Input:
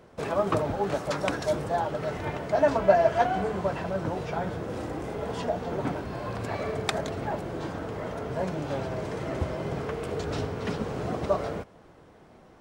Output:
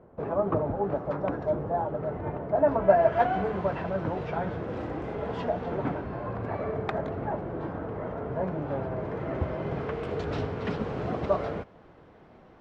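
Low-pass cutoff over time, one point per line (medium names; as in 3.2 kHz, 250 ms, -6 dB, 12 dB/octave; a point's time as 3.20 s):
2.58 s 1 kHz
3.30 s 2.8 kHz
5.69 s 2.8 kHz
6.34 s 1.5 kHz
8.93 s 1.5 kHz
10.06 s 3.4 kHz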